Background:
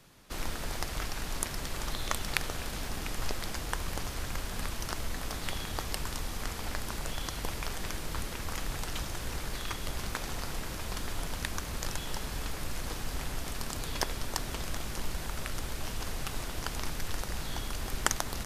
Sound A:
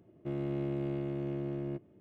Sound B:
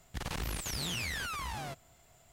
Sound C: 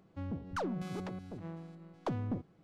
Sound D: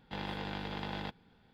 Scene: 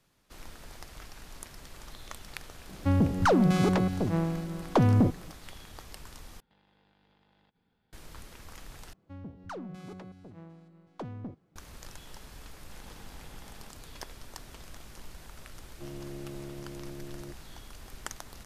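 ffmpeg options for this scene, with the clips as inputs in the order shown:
ffmpeg -i bed.wav -i cue0.wav -i cue1.wav -i cue2.wav -i cue3.wav -filter_complex "[3:a]asplit=2[link_01][link_02];[4:a]asplit=2[link_03][link_04];[0:a]volume=-11.5dB[link_05];[link_01]alimiter=level_in=30.5dB:limit=-1dB:release=50:level=0:latency=1[link_06];[link_03]acompressor=threshold=-52dB:ratio=16:attack=1.9:release=59:knee=1:detection=rms[link_07];[link_05]asplit=3[link_08][link_09][link_10];[link_08]atrim=end=6.404[link_11];[link_07]atrim=end=1.53,asetpts=PTS-STARTPTS,volume=-11dB[link_12];[link_09]atrim=start=7.926:end=8.934[link_13];[link_02]atrim=end=2.63,asetpts=PTS-STARTPTS,volume=-4.5dB[link_14];[link_10]atrim=start=11.556[link_15];[link_06]atrim=end=2.63,asetpts=PTS-STARTPTS,volume=-14.5dB,afade=type=in:duration=0.004:curve=hsin,afade=type=out:start_time=2.626:duration=0.004:curve=hsin,adelay=2690[link_16];[link_04]atrim=end=1.53,asetpts=PTS-STARTPTS,volume=-15dB,afade=type=in:duration=0.004:curve=hsin,afade=type=out:start_time=1.526:duration=0.004:curve=hsin,adelay=12590[link_17];[1:a]atrim=end=2,asetpts=PTS-STARTPTS,volume=-7.5dB,afade=type=in:duration=0.004:curve=hsin,afade=type=out:start_time=1.996:duration=0.004:curve=hsin,adelay=15550[link_18];[link_11][link_12]acrossfade=duration=0.004:curve1=hsin:curve2=hsin[link_19];[link_19][link_13]acrossfade=duration=0.004:curve1=hsin:curve2=hsin[link_20];[link_20][link_14]acrossfade=duration=0.004:curve1=hsin:curve2=hsin[link_21];[link_21][link_15]acrossfade=duration=0.004:curve1=hsin:curve2=hsin[link_22];[link_22][link_16][link_17][link_18]amix=inputs=4:normalize=0" out.wav

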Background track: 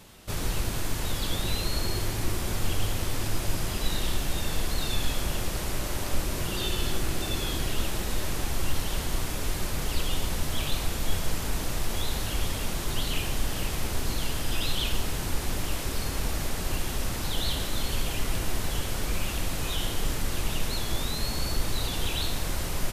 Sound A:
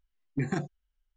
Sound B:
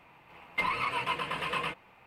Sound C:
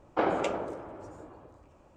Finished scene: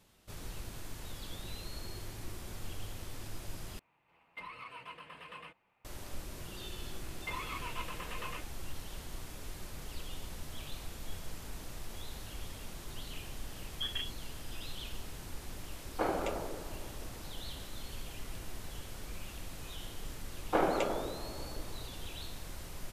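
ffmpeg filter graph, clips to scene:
ffmpeg -i bed.wav -i cue0.wav -i cue1.wav -i cue2.wav -filter_complex "[2:a]asplit=2[link_01][link_02];[3:a]asplit=2[link_03][link_04];[0:a]volume=-15dB[link_05];[1:a]lowpass=frequency=3000:width_type=q:width=0.5098,lowpass=frequency=3000:width_type=q:width=0.6013,lowpass=frequency=3000:width_type=q:width=0.9,lowpass=frequency=3000:width_type=q:width=2.563,afreqshift=-3500[link_06];[link_05]asplit=2[link_07][link_08];[link_07]atrim=end=3.794[link_09];[link_01]atrim=end=2.06,asetpts=PTS-STARTPTS,volume=-16.5dB[link_10];[link_08]atrim=start=5.846[link_11];[link_02]atrim=end=2.06,asetpts=PTS-STARTPTS,volume=-11dB,afade=type=in:duration=0.004:curve=hsin,afade=type=out:start_time=2.056:duration=0.004:curve=hsin,adelay=6690[link_12];[link_06]atrim=end=1.16,asetpts=PTS-STARTPTS,volume=-9dB,afade=type=in:duration=0.004:curve=hsin,afade=type=out:start_time=1.156:duration=0.004:curve=hsin,adelay=13430[link_13];[link_03]atrim=end=1.96,asetpts=PTS-STARTPTS,volume=-6dB,afade=type=in:duration=0.004:curve=hsin,afade=type=out:start_time=1.956:duration=0.004:curve=hsin,adelay=15820[link_14];[link_04]atrim=end=1.96,asetpts=PTS-STARTPTS,volume=-2dB,afade=type=in:duration=0.004:curve=hsin,afade=type=out:start_time=1.956:duration=0.004:curve=hsin,adelay=897876S[link_15];[link_09][link_10]acrossfade=duration=0.004:curve1=hsin:curve2=hsin[link_16];[link_16][link_11]acrossfade=duration=0.004:curve1=hsin:curve2=hsin[link_17];[link_17][link_12][link_13][link_14][link_15]amix=inputs=5:normalize=0" out.wav

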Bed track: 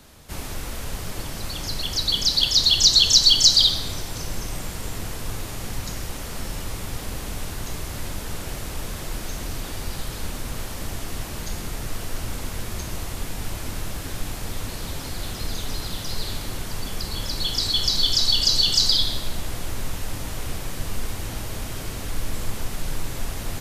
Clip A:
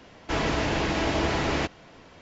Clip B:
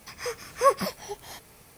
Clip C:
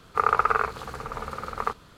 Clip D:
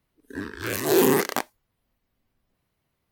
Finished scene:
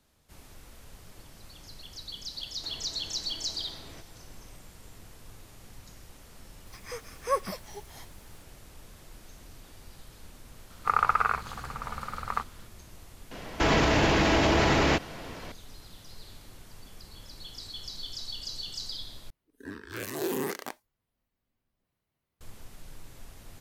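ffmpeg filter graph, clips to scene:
ffmpeg -i bed.wav -i cue0.wav -i cue1.wav -i cue2.wav -i cue3.wav -filter_complex "[1:a]asplit=2[link_01][link_02];[0:a]volume=-19dB[link_03];[link_01]acompressor=threshold=-38dB:ratio=6:attack=3.2:release=140:knee=1:detection=peak[link_04];[3:a]equalizer=frequency=430:width=1.6:gain=-12[link_05];[link_02]alimiter=level_in=21.5dB:limit=-1dB:release=50:level=0:latency=1[link_06];[4:a]alimiter=limit=-12.5dB:level=0:latency=1:release=23[link_07];[link_03]asplit=2[link_08][link_09];[link_08]atrim=end=19.304[link_10];[link_07]atrim=end=3.11,asetpts=PTS-STARTPTS,volume=-8dB[link_11];[link_09]atrim=start=22.406[link_12];[link_04]atrim=end=2.21,asetpts=PTS-STARTPTS,volume=-10dB,afade=type=in:duration=0.004:curve=hsin,afade=type=out:start_time=2.206:duration=0.004:curve=hsin,adelay=2350[link_13];[2:a]atrim=end=1.77,asetpts=PTS-STARTPTS,volume=-7dB,afade=type=in:duration=0.004:curve=hsin,afade=type=out:start_time=1.766:duration=0.004:curve=hsin,adelay=293706S[link_14];[link_05]atrim=end=1.97,asetpts=PTS-STARTPTS,volume=-1.5dB,afade=type=in:duration=0.004:curve=hsin,afade=type=out:start_time=1.966:duration=0.004:curve=hsin,adelay=10700[link_15];[link_06]atrim=end=2.21,asetpts=PTS-STARTPTS,volume=-13.5dB,afade=type=in:duration=0.004:curve=hsin,afade=type=out:start_time=2.206:duration=0.004:curve=hsin,adelay=13310[link_16];[link_10][link_11]acrossfade=duration=0.004:curve1=hsin:curve2=hsin[link_17];[link_17][link_12]acrossfade=duration=0.004:curve1=hsin:curve2=hsin[link_18];[link_18][link_13][link_14][link_15][link_16]amix=inputs=5:normalize=0" out.wav

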